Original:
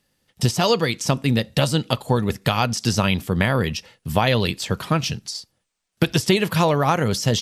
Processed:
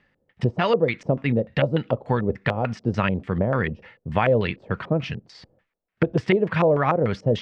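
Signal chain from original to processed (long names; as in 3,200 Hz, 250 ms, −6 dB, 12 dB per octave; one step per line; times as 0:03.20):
Butterworth low-pass 11,000 Hz
reversed playback
upward compression, threshold −26 dBFS
reversed playback
auto-filter low-pass square 3.4 Hz 540–2,000 Hz
level −3.5 dB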